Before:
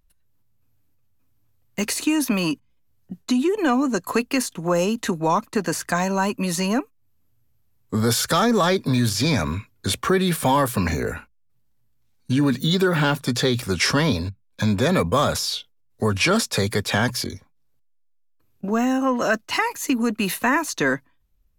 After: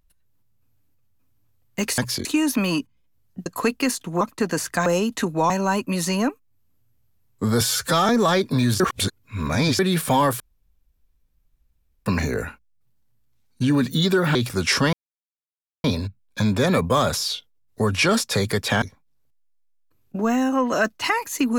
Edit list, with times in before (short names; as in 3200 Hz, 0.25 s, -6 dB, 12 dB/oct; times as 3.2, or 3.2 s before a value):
3.19–3.97 cut
4.72–5.36 move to 6.01
8.12–8.44 stretch 1.5×
9.15–10.14 reverse
10.75 insert room tone 1.66 s
13.04–13.48 cut
14.06 insert silence 0.91 s
17.04–17.31 move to 1.98